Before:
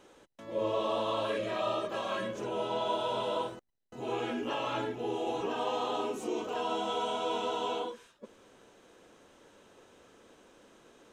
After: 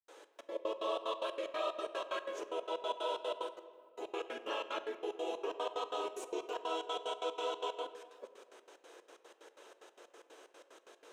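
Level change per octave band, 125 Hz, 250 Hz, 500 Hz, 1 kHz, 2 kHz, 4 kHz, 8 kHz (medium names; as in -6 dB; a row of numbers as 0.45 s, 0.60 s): under -30 dB, -11.0 dB, -5.5 dB, -6.5 dB, -5.0 dB, -5.0 dB, -4.0 dB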